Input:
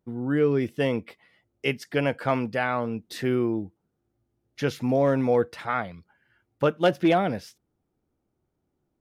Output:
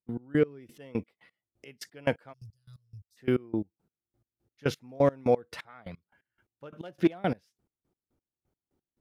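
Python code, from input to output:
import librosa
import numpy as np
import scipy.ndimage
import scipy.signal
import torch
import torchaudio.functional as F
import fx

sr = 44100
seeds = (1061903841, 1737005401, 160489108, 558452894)

y = fx.ellip_bandstop(x, sr, low_hz=100.0, high_hz=5400.0, order=3, stop_db=40, at=(2.32, 3.16), fade=0.02)
y = fx.step_gate(y, sr, bpm=174, pattern='.x..x...x.', floor_db=-24.0, edge_ms=4.5)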